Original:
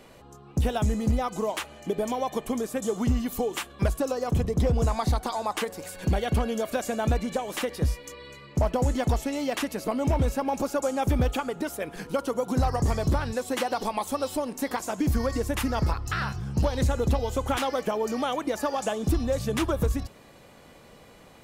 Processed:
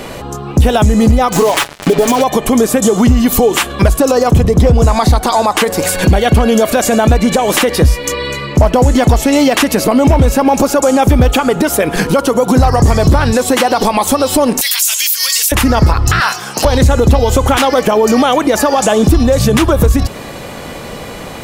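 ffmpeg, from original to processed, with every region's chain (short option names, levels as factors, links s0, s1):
-filter_complex "[0:a]asettb=1/sr,asplit=3[s0][s1][s2];[s0]atrim=end=1.324[s3];[s1]atrim=start=1.32:end=2.24,asetpts=PTS-STARTPTS,afade=t=in:d=0.004:c=qsin,afade=t=out:st=0.916:d=0.004:c=qsin,aecho=1:1:7.1:0.55,atrim=end_sample=40572,acrusher=bits=5:mix=0:aa=0.5[s4];[s2]atrim=start=2.236[s5];[s3][s4]acrossfade=d=0.004:c1=hsin:c2=qsin[s6];[s6][s5]acrossfade=d=0.004:c1=qsin:c2=hsin,asettb=1/sr,asplit=3[s7][s8][s9];[s7]atrim=end=14.614[s10];[s8]atrim=start=14.61:end=15.52,asetpts=PTS-STARTPTS,afade=t=in:d=0.004:c=qsin,afade=t=out:st=0.906:d=0.004:c=qsin,acompressor=threshold=0.0501:ratio=2.5:attack=3.2:release=140:knee=1:detection=peak,highpass=f=2900:t=q:w=2,aemphasis=mode=production:type=riaa[s11];[s9]atrim=start=15.516[s12];[s10][s11]acrossfade=d=0.004:c1=hsin:c2=qsin[s13];[s13][s12]acrossfade=d=0.004:c1=qsin:c2=hsin,asettb=1/sr,asplit=3[s14][s15][s16];[s14]atrim=end=16.204[s17];[s15]atrim=start=16.2:end=16.65,asetpts=PTS-STARTPTS,afade=t=in:d=0.004:c=qsin,afade=t=out:st=0.446:d=0.004:c=qsin,highpass=690,highshelf=f=5300:g=6.5[s18];[s16]atrim=start=16.646[s19];[s17][s18]acrossfade=d=0.004:c1=hsin:c2=qsin[s20];[s20][s19]acrossfade=d=0.004:c1=qsin:c2=hsin,acompressor=threshold=0.0251:ratio=2,alimiter=level_in=20:limit=0.891:release=50:level=0:latency=1,volume=0.891"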